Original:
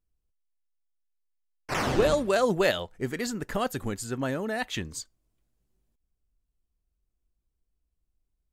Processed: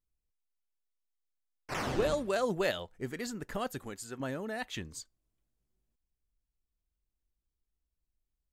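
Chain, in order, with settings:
0:03.78–0:04.20: low-shelf EQ 230 Hz −10.5 dB
level −7 dB

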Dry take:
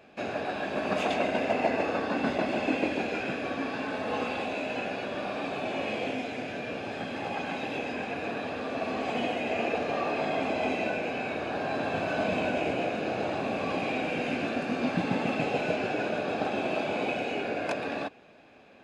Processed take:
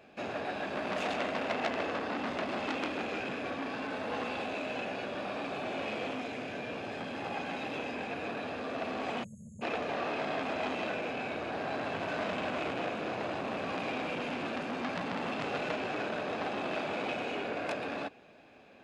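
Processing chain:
time-frequency box erased 0:09.23–0:09.62, 220–6,400 Hz
saturating transformer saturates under 2,400 Hz
level −2 dB

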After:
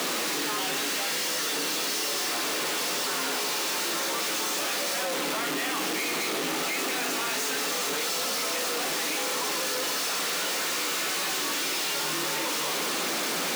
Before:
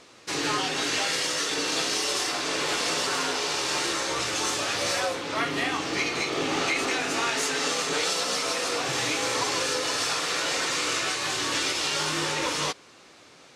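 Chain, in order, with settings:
sign of each sample alone
Butterworth high-pass 160 Hz 72 dB per octave
level −1 dB

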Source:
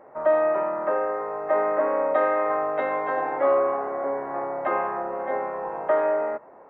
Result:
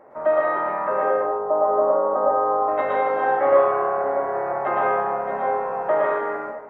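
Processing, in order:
0:01.10–0:02.68: Butterworth low-pass 1,200 Hz 36 dB per octave
dense smooth reverb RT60 0.66 s, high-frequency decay 0.95×, pre-delay 100 ms, DRR −4 dB

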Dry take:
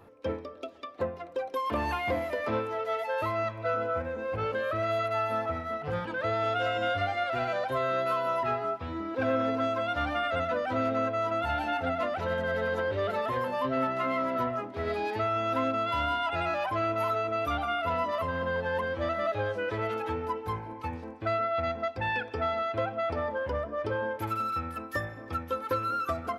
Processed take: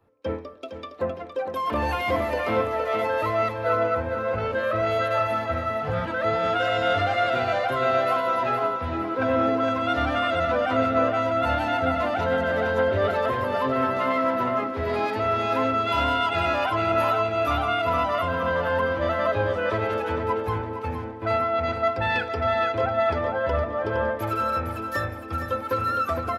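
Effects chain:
in parallel at +2 dB: brickwall limiter −26.5 dBFS, peak gain reduction 7 dB
on the sum: repeating echo 463 ms, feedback 52%, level −6.5 dB
multiband upward and downward expander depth 70%

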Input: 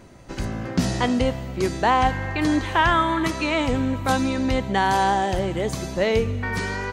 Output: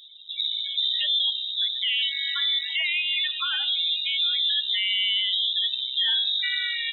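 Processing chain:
0:01.65–0:03.92: downward compressor 5 to 1, threshold −21 dBFS, peak gain reduction 7 dB
parametric band 1,600 Hz +4.5 dB 0.33 octaves
spectral peaks only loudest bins 16
dynamic equaliser 500 Hz, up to +7 dB, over −41 dBFS, Q 6.1
voice inversion scrambler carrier 3,800 Hz
brickwall limiter −16.5 dBFS, peak gain reduction 10 dB
hum removal 99.21 Hz, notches 21

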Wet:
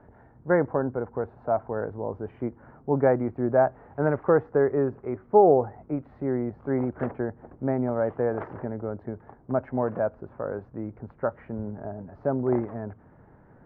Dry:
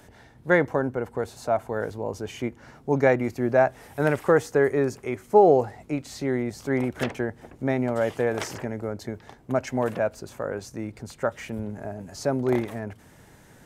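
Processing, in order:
low-pass filter 1,400 Hz 24 dB per octave
level −1 dB

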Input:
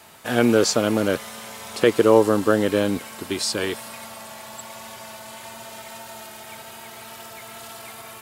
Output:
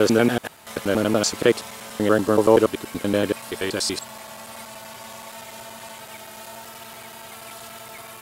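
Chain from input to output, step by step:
slices reordered back to front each 95 ms, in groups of 7

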